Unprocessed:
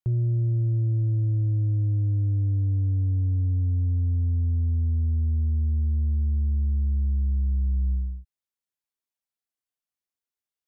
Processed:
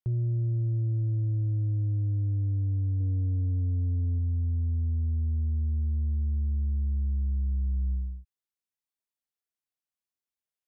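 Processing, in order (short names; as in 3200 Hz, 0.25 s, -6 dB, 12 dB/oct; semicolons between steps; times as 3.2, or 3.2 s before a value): 3–4.19 dynamic EQ 490 Hz, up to +6 dB, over -46 dBFS, Q 0.86; gain -4 dB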